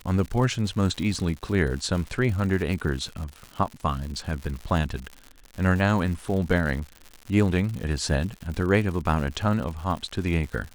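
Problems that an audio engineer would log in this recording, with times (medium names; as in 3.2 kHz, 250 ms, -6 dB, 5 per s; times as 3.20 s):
crackle 150 per s -32 dBFS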